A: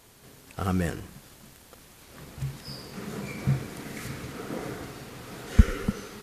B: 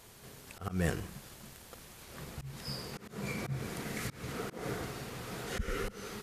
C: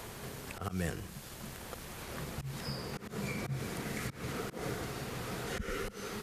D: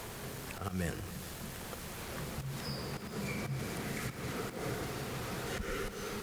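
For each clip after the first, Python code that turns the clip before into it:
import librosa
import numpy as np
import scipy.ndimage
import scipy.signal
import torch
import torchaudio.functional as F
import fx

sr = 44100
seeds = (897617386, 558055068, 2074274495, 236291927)

y1 = fx.auto_swell(x, sr, attack_ms=201.0)
y1 = fx.peak_eq(y1, sr, hz=280.0, db=-7.0, octaves=0.2)
y2 = fx.band_squash(y1, sr, depth_pct=70)
y3 = y2 + 0.5 * 10.0 ** (-47.0 / 20.0) * np.sign(y2)
y3 = fx.echo_heads(y3, sr, ms=140, heads='all three', feedback_pct=68, wet_db=-19.0)
y3 = F.gain(torch.from_numpy(y3), -1.5).numpy()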